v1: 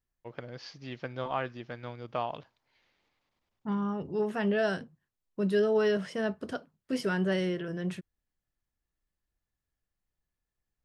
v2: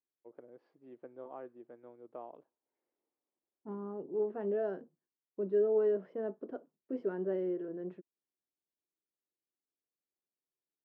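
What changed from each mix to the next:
second voice +5.5 dB; master: add ladder band-pass 420 Hz, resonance 40%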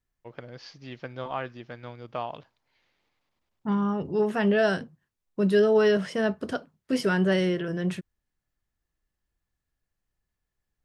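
master: remove ladder band-pass 420 Hz, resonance 40%

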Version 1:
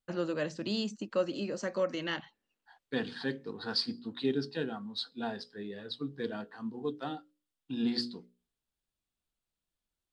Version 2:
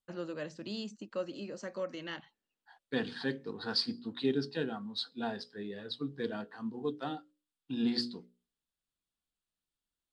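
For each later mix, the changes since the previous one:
first voice -6.5 dB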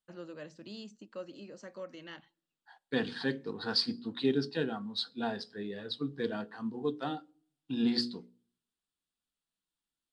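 first voice -7.5 dB; reverb: on, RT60 0.55 s

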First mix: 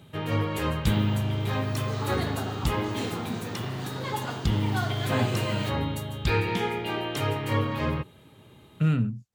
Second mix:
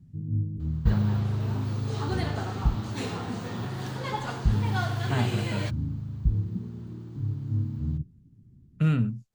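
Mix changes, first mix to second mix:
first sound: add inverse Chebyshev low-pass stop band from 620 Hz, stop band 50 dB; master: remove high-pass 69 Hz

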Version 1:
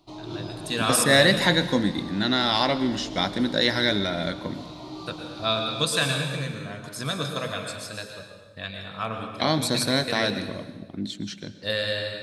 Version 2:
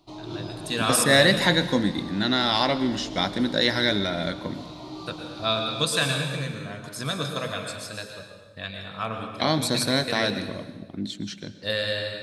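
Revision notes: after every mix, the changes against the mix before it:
no change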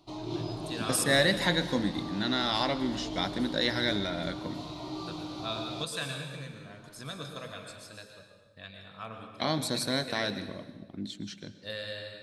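first voice -11.5 dB; second voice -6.5 dB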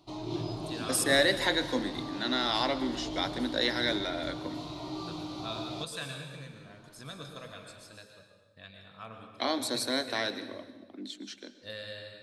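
first voice -3.5 dB; second voice: add steep high-pass 240 Hz 48 dB/octave

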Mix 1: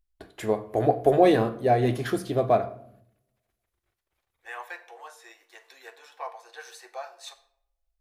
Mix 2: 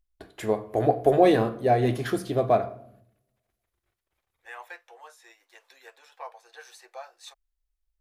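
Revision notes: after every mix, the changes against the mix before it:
second voice: send off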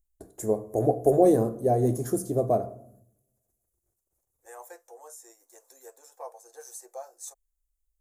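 second voice +5.0 dB; master: add FFT filter 520 Hz 0 dB, 2.9 kHz -25 dB, 4.4 kHz -14 dB, 6.8 kHz +8 dB

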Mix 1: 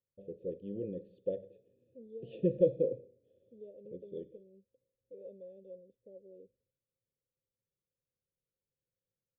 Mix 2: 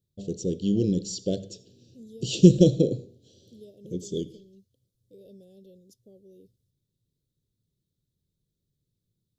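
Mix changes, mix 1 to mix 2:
second voice -10.0 dB; master: remove cascade formant filter e

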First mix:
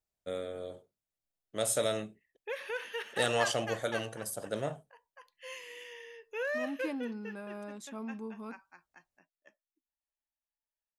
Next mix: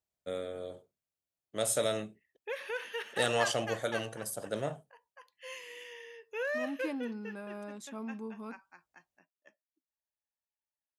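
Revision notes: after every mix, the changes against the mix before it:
master: add high-pass 59 Hz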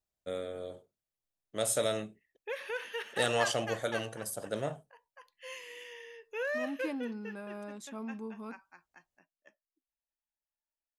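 master: remove high-pass 59 Hz

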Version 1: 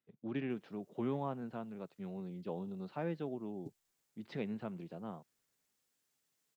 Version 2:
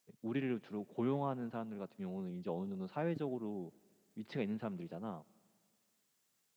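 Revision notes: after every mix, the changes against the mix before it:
second voice: entry -0.50 s; reverb: on, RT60 2.1 s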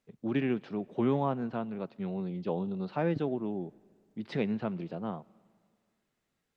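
first voice +7.5 dB; second voice: add tilt EQ -3.5 dB/octave

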